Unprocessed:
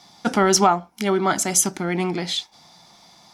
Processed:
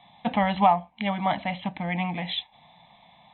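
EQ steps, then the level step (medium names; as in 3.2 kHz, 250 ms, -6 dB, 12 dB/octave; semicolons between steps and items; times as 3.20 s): brick-wall FIR low-pass 4.1 kHz; static phaser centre 1.4 kHz, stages 6; 0.0 dB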